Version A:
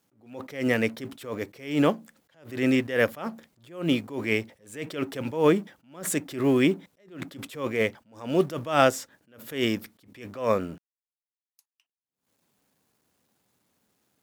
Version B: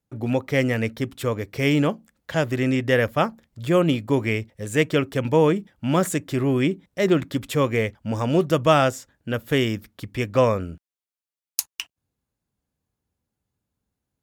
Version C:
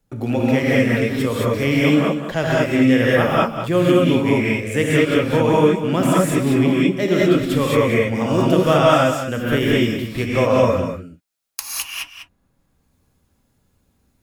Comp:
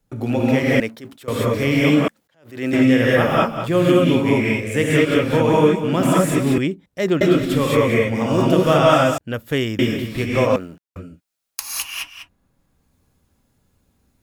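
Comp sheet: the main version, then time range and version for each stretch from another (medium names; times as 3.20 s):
C
0.80–1.28 s: from A
2.08–2.73 s: from A
6.58–7.21 s: from B
9.18–9.79 s: from B
10.56–10.96 s: from A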